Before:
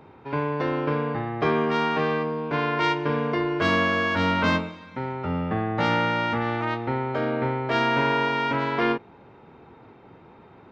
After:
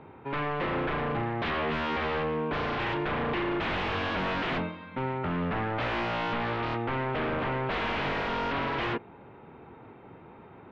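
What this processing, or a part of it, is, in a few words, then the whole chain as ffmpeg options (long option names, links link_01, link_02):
synthesiser wavefolder: -af "aeval=exprs='0.0596*(abs(mod(val(0)/0.0596+3,4)-2)-1)':channel_layout=same,lowpass=frequency=3300:width=0.5412,lowpass=frequency=3300:width=1.3066"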